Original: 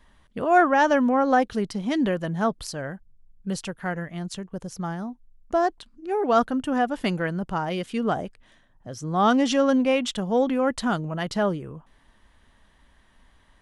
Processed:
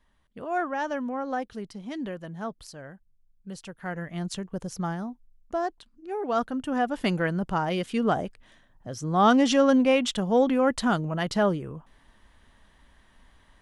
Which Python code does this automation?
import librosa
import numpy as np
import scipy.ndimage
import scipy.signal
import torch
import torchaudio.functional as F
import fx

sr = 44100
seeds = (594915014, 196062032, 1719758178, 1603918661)

y = fx.gain(x, sr, db=fx.line((3.57, -10.5), (4.2, 0.5), (4.84, 0.5), (5.57, -6.5), (6.34, -6.5), (7.19, 0.5)))